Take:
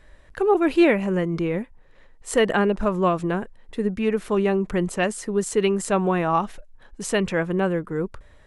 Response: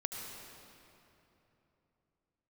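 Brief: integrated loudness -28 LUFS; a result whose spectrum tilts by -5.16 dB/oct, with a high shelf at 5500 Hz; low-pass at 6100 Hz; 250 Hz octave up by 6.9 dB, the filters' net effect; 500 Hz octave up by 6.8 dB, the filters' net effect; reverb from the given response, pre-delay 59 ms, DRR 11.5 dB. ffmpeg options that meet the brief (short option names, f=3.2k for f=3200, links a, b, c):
-filter_complex "[0:a]lowpass=6.1k,equalizer=f=250:t=o:g=8.5,equalizer=f=500:t=o:g=5.5,highshelf=f=5.5k:g=5,asplit=2[a][b];[1:a]atrim=start_sample=2205,adelay=59[c];[b][c]afir=irnorm=-1:irlink=0,volume=-13dB[d];[a][d]amix=inputs=2:normalize=0,volume=-11.5dB"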